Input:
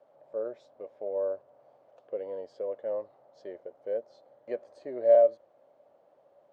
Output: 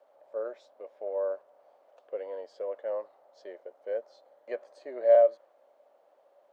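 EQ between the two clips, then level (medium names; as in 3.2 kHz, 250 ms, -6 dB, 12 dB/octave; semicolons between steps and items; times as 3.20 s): high-pass 260 Hz 12 dB/octave; dynamic bell 1.4 kHz, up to +4 dB, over -45 dBFS, Q 0.86; bass shelf 410 Hz -11.5 dB; +3.0 dB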